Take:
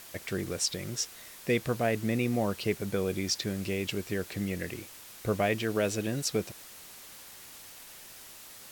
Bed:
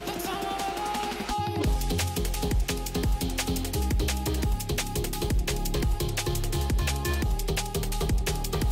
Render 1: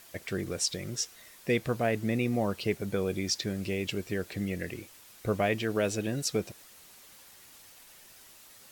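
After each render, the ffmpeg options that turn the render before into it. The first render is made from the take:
ffmpeg -i in.wav -af "afftdn=noise_reduction=6:noise_floor=-49" out.wav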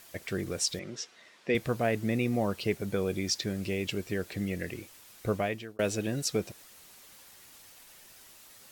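ffmpeg -i in.wav -filter_complex "[0:a]asettb=1/sr,asplit=3[link_01][link_02][link_03];[link_01]atrim=end=0.794[link_04];[link_02]atrim=start=0.79:end=1.55,asetpts=PTS-STARTPTS,afade=type=in:duration=0.004:curve=qsin,afade=type=out:start_time=0.756:duration=0.004:curve=qsin,highpass=200,lowpass=4200[link_05];[link_03]atrim=start=1.546[link_06];[link_04][link_05]acrossfade=duration=0.004:curve1=hsin:curve2=qsin[link_07];[link_07][link_06]acrossfade=duration=0.004:curve1=qsin:curve2=hsin,asplit=2[link_08][link_09];[link_08]atrim=end=5.79,asetpts=PTS-STARTPTS,afade=type=out:start_time=5.29:duration=0.5[link_10];[link_09]atrim=start=5.79,asetpts=PTS-STARTPTS,afade=type=in:duration=0.004:curve=hsin[link_11];[link_10][link_11]concat=n=2:v=0:a=1" out.wav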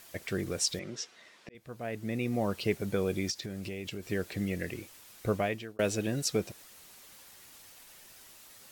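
ffmpeg -i in.wav -filter_complex "[0:a]asplit=3[link_01][link_02][link_03];[link_01]afade=type=out:start_time=3.3:duration=0.02[link_04];[link_02]acompressor=threshold=-35dB:ratio=5:attack=3.2:release=140:knee=1:detection=peak,afade=type=in:start_time=3.3:duration=0.02,afade=type=out:start_time=4.09:duration=0.02[link_05];[link_03]afade=type=in:start_time=4.09:duration=0.02[link_06];[link_04][link_05][link_06]amix=inputs=3:normalize=0,asplit=2[link_07][link_08];[link_07]atrim=end=1.49,asetpts=PTS-STARTPTS,afade=type=out:start_time=1.486:duration=0.004:curve=hsin[link_09];[link_08]atrim=start=1.49,asetpts=PTS-STARTPTS,afade=type=in:duration=1.11[link_10];[link_09][link_10]concat=n=2:v=0:a=1" out.wav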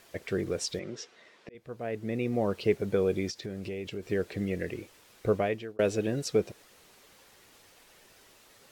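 ffmpeg -i in.wav -af "lowpass=frequency=3900:poles=1,equalizer=frequency=440:width=2:gain=6" out.wav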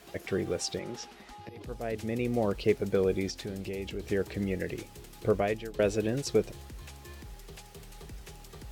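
ffmpeg -i in.wav -i bed.wav -filter_complex "[1:a]volume=-19.5dB[link_01];[0:a][link_01]amix=inputs=2:normalize=0" out.wav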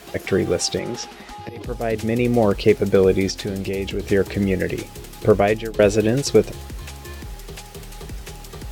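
ffmpeg -i in.wav -af "volume=11.5dB,alimiter=limit=-3dB:level=0:latency=1" out.wav

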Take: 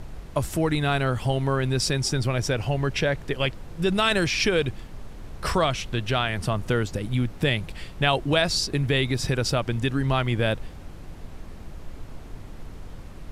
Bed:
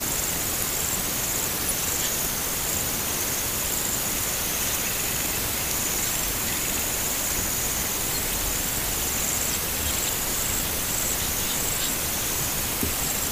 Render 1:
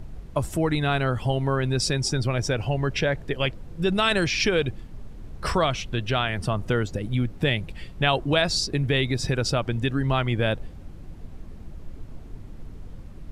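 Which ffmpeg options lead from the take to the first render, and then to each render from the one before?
ffmpeg -i in.wav -af "afftdn=noise_reduction=8:noise_floor=-41" out.wav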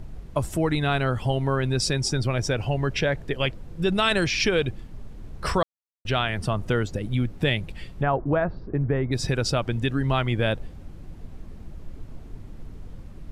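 ffmpeg -i in.wav -filter_complex "[0:a]asplit=3[link_01][link_02][link_03];[link_01]afade=type=out:start_time=8.01:duration=0.02[link_04];[link_02]lowpass=frequency=1500:width=0.5412,lowpass=frequency=1500:width=1.3066,afade=type=in:start_time=8.01:duration=0.02,afade=type=out:start_time=9.11:duration=0.02[link_05];[link_03]afade=type=in:start_time=9.11:duration=0.02[link_06];[link_04][link_05][link_06]amix=inputs=3:normalize=0,asplit=3[link_07][link_08][link_09];[link_07]atrim=end=5.63,asetpts=PTS-STARTPTS,afade=type=out:start_time=5.626:duration=0.004:curve=hsin[link_10];[link_08]atrim=start=5.63:end=6.05,asetpts=PTS-STARTPTS,volume=0[link_11];[link_09]atrim=start=6.05,asetpts=PTS-STARTPTS,afade=type=in:duration=0.004:curve=hsin[link_12];[link_10][link_11][link_12]concat=n=3:v=0:a=1" out.wav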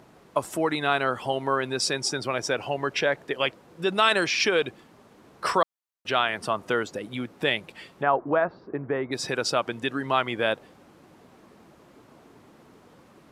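ffmpeg -i in.wav -af "highpass=310,equalizer=frequency=1100:width_type=o:width=1:gain=4.5" out.wav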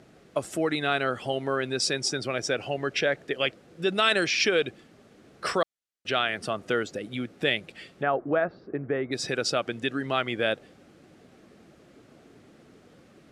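ffmpeg -i in.wav -af "lowpass=10000,equalizer=frequency=970:width=3.1:gain=-12.5" out.wav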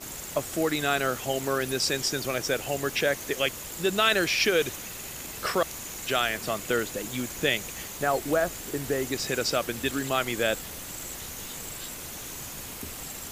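ffmpeg -i in.wav -i bed.wav -filter_complex "[1:a]volume=-12.5dB[link_01];[0:a][link_01]amix=inputs=2:normalize=0" out.wav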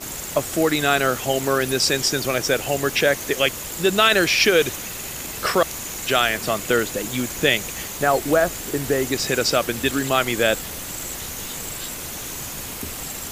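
ffmpeg -i in.wav -af "volume=7dB,alimiter=limit=-2dB:level=0:latency=1" out.wav

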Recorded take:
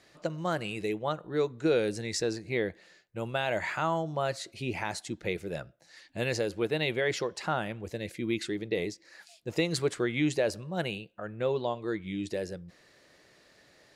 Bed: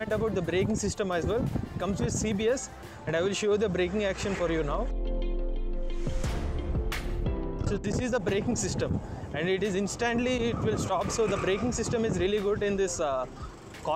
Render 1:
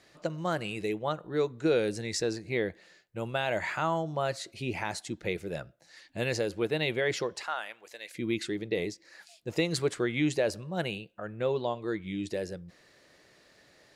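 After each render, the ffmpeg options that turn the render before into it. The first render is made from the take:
ffmpeg -i in.wav -filter_complex "[0:a]asettb=1/sr,asplit=3[link_01][link_02][link_03];[link_01]atrim=end=7.434[link_04];[link_02]atrim=start=7.43:end=8.15,asetpts=PTS-STARTPTS,afade=type=in:duration=0.004:curve=qsin,afade=type=out:start_time=0.716:duration=0.004:curve=qsin,highpass=950[link_05];[link_03]atrim=start=8.146[link_06];[link_04][link_05]acrossfade=duration=0.004:curve1=hsin:curve2=qsin[link_07];[link_07][link_06]acrossfade=duration=0.004:curve1=qsin:curve2=hsin" out.wav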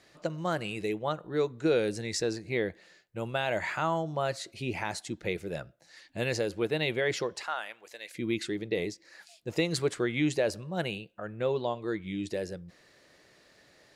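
ffmpeg -i in.wav -af anull out.wav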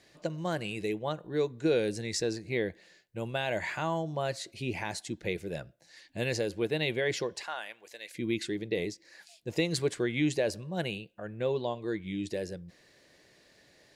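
ffmpeg -i in.wav -af "equalizer=frequency=990:width_type=o:width=1.6:gain=-3,bandreject=frequency=1300:width=7.2" out.wav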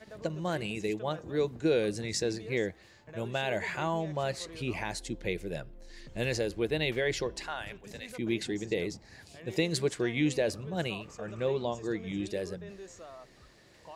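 ffmpeg -i in.wav -i bed.wav -filter_complex "[1:a]volume=-19dB[link_01];[0:a][link_01]amix=inputs=2:normalize=0" out.wav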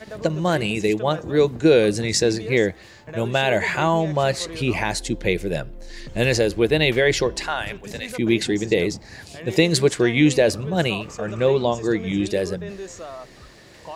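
ffmpeg -i in.wav -af "volume=12dB" out.wav

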